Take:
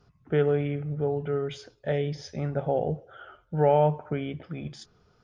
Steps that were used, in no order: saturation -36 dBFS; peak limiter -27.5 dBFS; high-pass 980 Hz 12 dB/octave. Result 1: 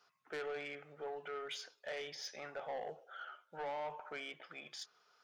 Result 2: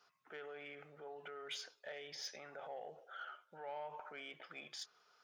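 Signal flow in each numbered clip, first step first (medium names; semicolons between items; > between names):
high-pass > peak limiter > saturation; peak limiter > high-pass > saturation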